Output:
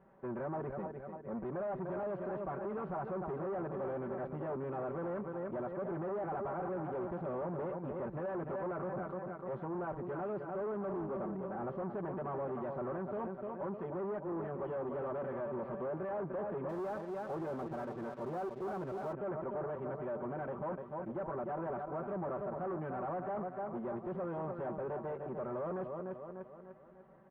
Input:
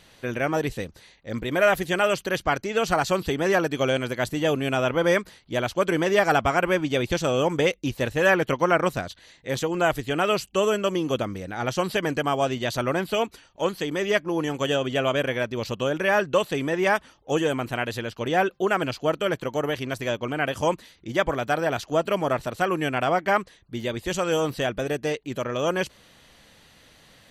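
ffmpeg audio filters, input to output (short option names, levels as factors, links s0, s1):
-filter_complex "[0:a]aecho=1:1:5.2:0.88,aecho=1:1:298|596|894|1192|1490:0.282|0.13|0.0596|0.0274|0.0126,aeval=exprs='(tanh(35.5*val(0)+0.55)-tanh(0.55))/35.5':c=same,lowpass=f=1200:w=0.5412,lowpass=f=1200:w=1.3066,asettb=1/sr,asplit=3[s0][s1][s2];[s0]atrim=end=16.694[s3];[s1]atrim=start=16.69:end=19.13,asetpts=PTS-STARTPTS,afade=t=in:d=0.004:c=qsin,afade=t=out:st=2.436:d=0.004:c=qsin,aeval=exprs='sgn(val(0))*max(abs(val(0))-0.00168,0)':c=same[s4];[s2]atrim=start=19.126[s5];[s3][s4]acrossfade=d=0.004:c1=hsin:c2=qsin[s6];[s6][s5]acrossfade=d=0.004:c1=qsin:c2=hsin,highpass=f=140:p=1,volume=0.631"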